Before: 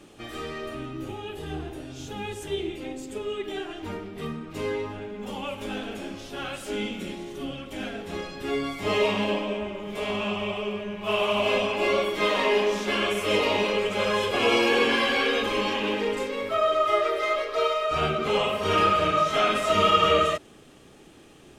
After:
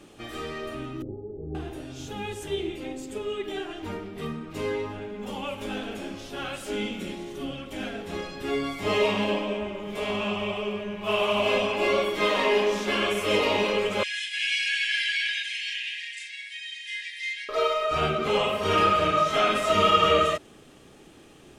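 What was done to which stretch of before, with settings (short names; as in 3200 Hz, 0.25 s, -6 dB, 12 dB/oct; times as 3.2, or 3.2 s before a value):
1.02–1.55 inverse Chebyshev low-pass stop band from 3100 Hz, stop band 80 dB
14.03–17.49 brick-wall FIR band-pass 1600–11000 Hz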